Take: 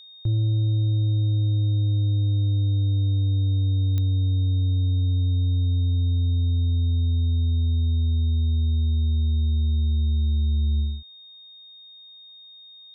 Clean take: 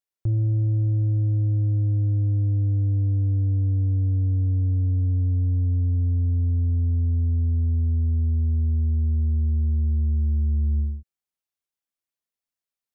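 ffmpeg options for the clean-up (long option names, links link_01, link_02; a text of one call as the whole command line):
ffmpeg -i in.wav -af "adeclick=threshold=4,bandreject=frequency=3700:width=30,afftdn=noise_reduction=30:noise_floor=-47" out.wav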